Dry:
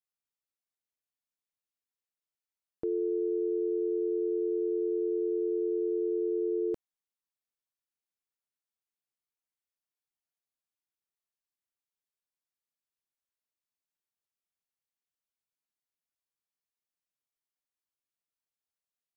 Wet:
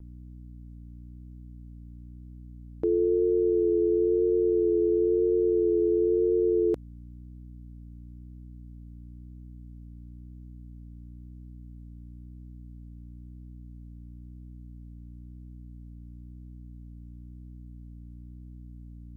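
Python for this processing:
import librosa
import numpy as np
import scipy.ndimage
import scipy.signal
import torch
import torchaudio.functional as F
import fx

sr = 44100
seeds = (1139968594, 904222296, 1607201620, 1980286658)

y = fx.add_hum(x, sr, base_hz=60, snr_db=14)
y = fx.vibrato(y, sr, rate_hz=0.99, depth_cents=27.0)
y = F.gain(torch.from_numpy(y), 6.5).numpy()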